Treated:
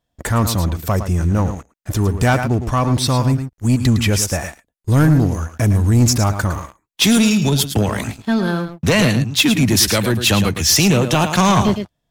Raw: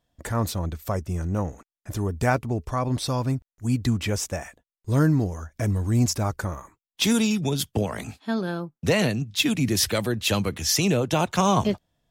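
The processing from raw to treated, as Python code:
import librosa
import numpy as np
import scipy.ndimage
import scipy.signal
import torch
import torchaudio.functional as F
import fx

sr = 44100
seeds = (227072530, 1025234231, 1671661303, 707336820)

y = fx.peak_eq(x, sr, hz=11000.0, db=7.5, octaves=0.25, at=(4.04, 6.04))
y = y + 10.0 ** (-10.5 / 20.0) * np.pad(y, (int(109 * sr / 1000.0), 0))[:len(y)]
y = fx.leveller(y, sr, passes=2)
y = fx.dynamic_eq(y, sr, hz=520.0, q=1.2, threshold_db=-33.0, ratio=4.0, max_db=-4)
y = y * librosa.db_to_amplitude(3.0)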